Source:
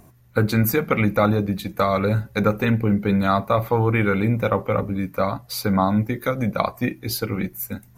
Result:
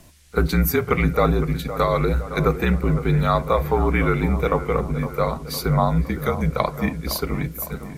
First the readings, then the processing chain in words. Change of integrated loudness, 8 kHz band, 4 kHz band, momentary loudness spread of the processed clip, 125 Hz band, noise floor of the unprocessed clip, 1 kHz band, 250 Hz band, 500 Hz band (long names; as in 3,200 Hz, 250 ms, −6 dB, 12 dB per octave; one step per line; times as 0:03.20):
0.0 dB, +0.5 dB, 0.0 dB, 6 LU, +1.0 dB, −51 dBFS, +0.5 dB, −2.0 dB, +0.5 dB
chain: frequency shifter −47 Hz
echo ahead of the sound 34 ms −18.5 dB
noise in a band 1,600–11,000 Hz −58 dBFS
on a send: delay with a low-pass on its return 511 ms, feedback 57%, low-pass 2,000 Hz, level −12 dB